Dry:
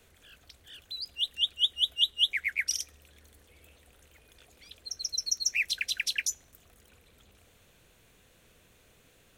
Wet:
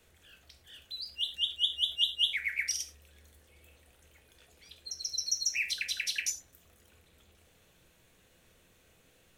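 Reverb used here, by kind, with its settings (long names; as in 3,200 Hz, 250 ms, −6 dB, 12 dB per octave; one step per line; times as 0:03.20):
reverb whose tail is shaped and stops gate 130 ms falling, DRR 4 dB
level −4 dB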